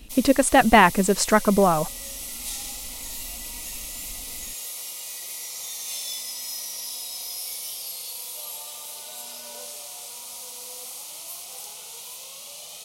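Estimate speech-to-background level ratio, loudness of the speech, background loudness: 14.5 dB, −18.5 LKFS, −33.0 LKFS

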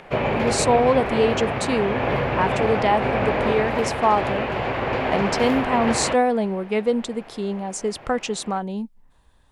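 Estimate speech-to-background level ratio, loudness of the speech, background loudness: 0.5 dB, −23.5 LKFS, −24.0 LKFS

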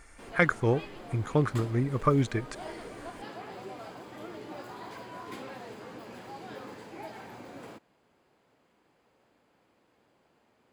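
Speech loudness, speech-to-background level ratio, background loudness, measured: −28.5 LKFS, 15.5 dB, −44.0 LKFS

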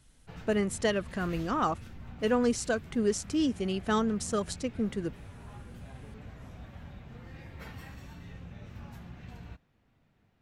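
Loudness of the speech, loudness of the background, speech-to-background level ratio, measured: −30.5 LKFS, −47.0 LKFS, 16.5 dB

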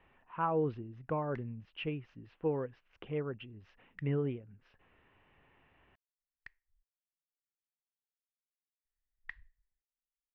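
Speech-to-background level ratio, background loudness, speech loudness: 17.5 dB, −55.0 LKFS, −37.5 LKFS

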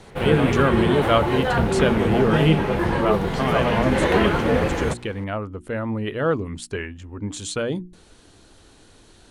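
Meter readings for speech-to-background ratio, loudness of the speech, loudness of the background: −3.5 dB, −25.0 LKFS, −21.5 LKFS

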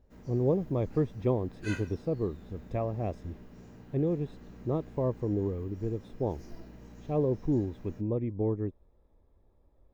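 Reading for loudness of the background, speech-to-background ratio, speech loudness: −50.0 LKFS, 18.0 dB, −32.0 LKFS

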